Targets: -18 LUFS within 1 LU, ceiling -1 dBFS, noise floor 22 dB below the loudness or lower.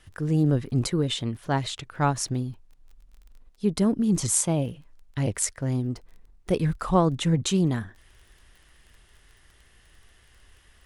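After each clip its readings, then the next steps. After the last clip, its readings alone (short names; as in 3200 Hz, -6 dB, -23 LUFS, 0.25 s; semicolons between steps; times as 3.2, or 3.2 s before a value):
ticks 21/s; loudness -25.5 LUFS; peak -6.0 dBFS; loudness target -18.0 LUFS
-> de-click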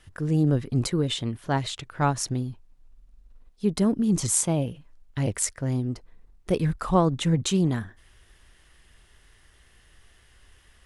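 ticks 0/s; loudness -25.5 LUFS; peak -6.0 dBFS; loudness target -18.0 LUFS
-> gain +7.5 dB; limiter -1 dBFS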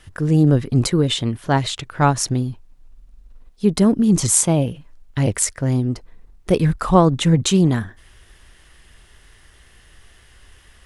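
loudness -18.0 LUFS; peak -1.0 dBFS; noise floor -51 dBFS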